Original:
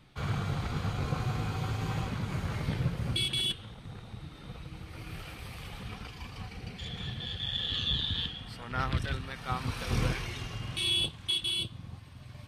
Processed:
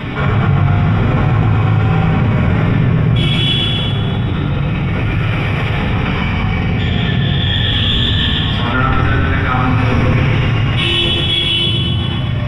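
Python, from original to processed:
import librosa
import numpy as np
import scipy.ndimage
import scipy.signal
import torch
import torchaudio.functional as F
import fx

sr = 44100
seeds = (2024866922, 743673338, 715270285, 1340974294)

y = scipy.signal.sosfilt(scipy.signal.butter(2, 58.0, 'highpass', fs=sr, output='sos'), x)
y = np.clip(10.0 ** (27.0 / 20.0) * y, -1.0, 1.0) / 10.0 ** (27.0 / 20.0)
y = scipy.signal.savgol_filter(y, 25, 4, mode='constant')
y = fx.echo_feedback(y, sr, ms=124, feedback_pct=58, wet_db=-5)
y = fx.room_shoebox(y, sr, seeds[0], volume_m3=50.0, walls='mixed', distance_m=2.0)
y = fx.env_flatten(y, sr, amount_pct=70)
y = F.gain(torch.from_numpy(y), 3.5).numpy()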